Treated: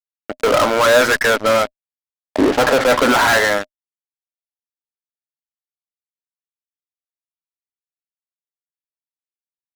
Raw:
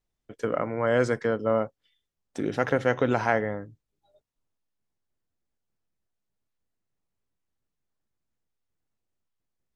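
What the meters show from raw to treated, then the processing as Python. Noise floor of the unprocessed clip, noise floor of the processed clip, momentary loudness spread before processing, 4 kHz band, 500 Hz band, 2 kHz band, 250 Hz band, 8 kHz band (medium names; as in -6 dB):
-83 dBFS, under -85 dBFS, 10 LU, +24.0 dB, +10.0 dB, +15.5 dB, +9.0 dB, no reading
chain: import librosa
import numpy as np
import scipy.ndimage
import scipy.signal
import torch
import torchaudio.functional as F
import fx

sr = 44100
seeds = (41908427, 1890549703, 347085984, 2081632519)

y = fx.filter_lfo_bandpass(x, sr, shape='saw_up', hz=0.43, low_hz=780.0, high_hz=3500.0, q=1.6)
y = fx.fuzz(y, sr, gain_db=45.0, gate_db=-51.0)
y = fx.small_body(y, sr, hz=(260.0, 610.0), ring_ms=55, db=8)
y = y * librosa.db_to_amplitude(1.0)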